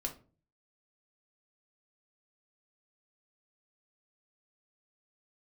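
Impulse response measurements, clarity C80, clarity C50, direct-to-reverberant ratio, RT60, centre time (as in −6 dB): 19.0 dB, 12.5 dB, 1.5 dB, 0.40 s, 13 ms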